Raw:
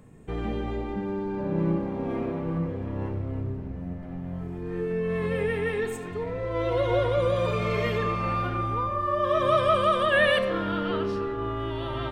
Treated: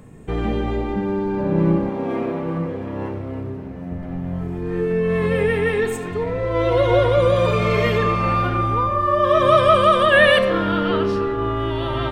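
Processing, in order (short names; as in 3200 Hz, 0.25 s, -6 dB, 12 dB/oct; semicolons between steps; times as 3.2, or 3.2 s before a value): 1.89–3.92 HPF 240 Hz 6 dB/oct; gain +8 dB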